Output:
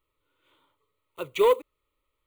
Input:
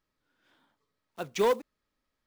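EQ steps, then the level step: fixed phaser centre 1100 Hz, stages 8; +5.5 dB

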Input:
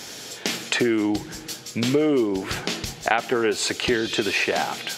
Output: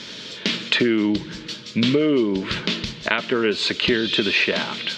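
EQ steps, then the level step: Butterworth band-stop 760 Hz, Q 3.9; synth low-pass 3700 Hz, resonance Q 2.2; bell 200 Hz +8 dB 0.64 oct; 0.0 dB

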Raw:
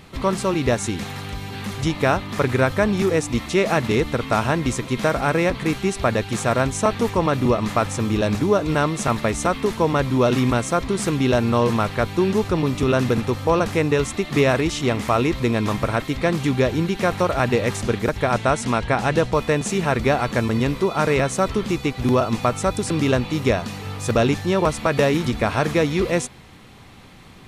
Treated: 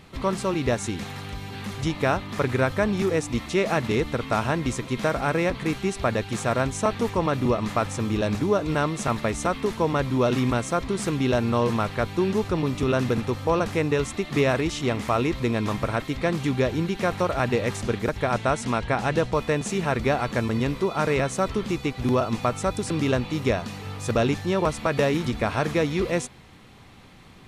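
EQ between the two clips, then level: high shelf 9700 Hz -3.5 dB; -4.0 dB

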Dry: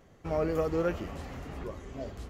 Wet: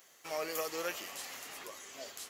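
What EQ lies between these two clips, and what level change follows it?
low shelf 150 Hz -12 dB; dynamic EQ 1400 Hz, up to -5 dB, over -57 dBFS, Q 6.3; differentiator; +14.5 dB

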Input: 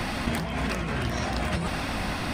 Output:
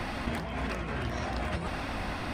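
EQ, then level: bell 170 Hz -4.5 dB 0.9 oct; high shelf 3900 Hz -8.5 dB; -3.5 dB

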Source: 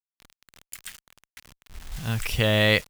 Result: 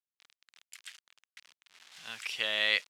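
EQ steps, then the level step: BPF 200–3300 Hz; differentiator; +5.5 dB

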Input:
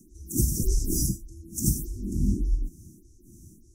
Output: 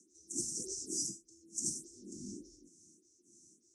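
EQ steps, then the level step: HPF 610 Hz 12 dB/oct; steep low-pass 8300 Hz 36 dB/oct; dynamic EQ 3300 Hz, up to -5 dB, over -50 dBFS, Q 0.71; -1.0 dB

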